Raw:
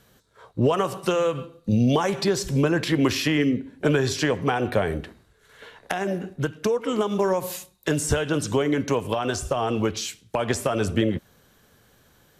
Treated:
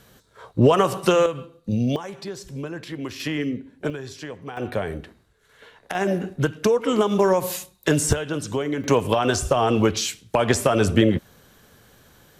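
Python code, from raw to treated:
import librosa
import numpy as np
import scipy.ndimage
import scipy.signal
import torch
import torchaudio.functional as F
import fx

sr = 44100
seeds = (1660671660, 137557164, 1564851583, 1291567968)

y = fx.gain(x, sr, db=fx.steps((0.0, 5.0), (1.26, -2.5), (1.96, -11.0), (3.2, -4.5), (3.9, -12.5), (4.57, -3.5), (5.95, 4.0), (8.13, -3.0), (8.84, 5.0)))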